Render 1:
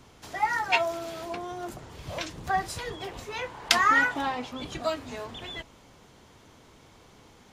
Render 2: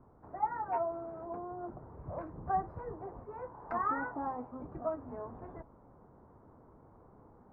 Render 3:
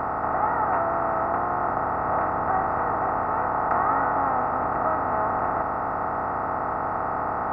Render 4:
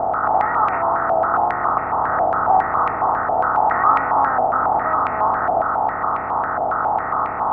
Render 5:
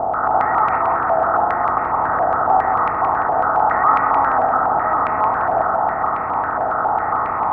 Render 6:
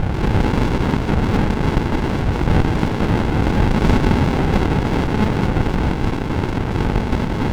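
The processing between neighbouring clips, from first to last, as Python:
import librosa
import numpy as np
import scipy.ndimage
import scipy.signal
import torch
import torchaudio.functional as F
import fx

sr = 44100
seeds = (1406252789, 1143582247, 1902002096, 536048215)

y1 = scipy.signal.sosfilt(scipy.signal.cheby2(4, 50, 3000.0, 'lowpass', fs=sr, output='sos'), x)
y1 = fx.rider(y1, sr, range_db=4, speed_s=2.0)
y1 = y1 * 10.0 ** (-7.0 / 20.0)
y2 = fx.bin_compress(y1, sr, power=0.2)
y2 = fx.high_shelf(y2, sr, hz=2200.0, db=9.5)
y2 = y2 * 10.0 ** (1.0 / 20.0)
y3 = fx.filter_held_lowpass(y2, sr, hz=7.3, low_hz=720.0, high_hz=2300.0)
y4 = fx.echo_feedback(y3, sr, ms=172, feedback_pct=42, wet_db=-6.0)
y5 = fx.running_max(y4, sr, window=65)
y5 = y5 * 10.0 ** (5.0 / 20.0)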